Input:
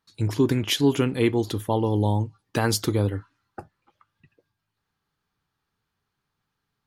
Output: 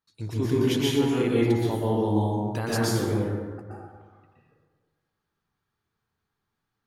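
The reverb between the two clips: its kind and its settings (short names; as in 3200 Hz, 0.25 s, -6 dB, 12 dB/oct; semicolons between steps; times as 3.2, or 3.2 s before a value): plate-style reverb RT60 1.5 s, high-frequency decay 0.45×, pre-delay 0.11 s, DRR -7 dB; gain -9.5 dB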